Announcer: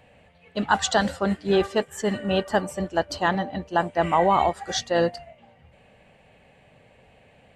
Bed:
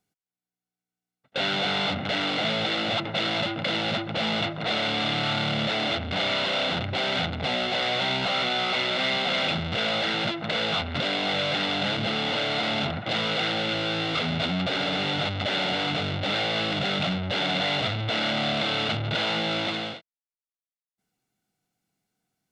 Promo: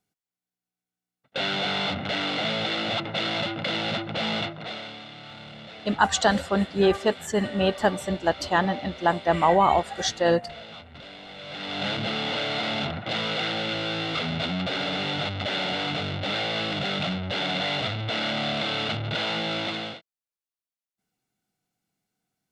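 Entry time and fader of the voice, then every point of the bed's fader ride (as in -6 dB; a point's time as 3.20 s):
5.30 s, +0.5 dB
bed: 4.37 s -1 dB
5.08 s -17 dB
11.34 s -17 dB
11.85 s -1.5 dB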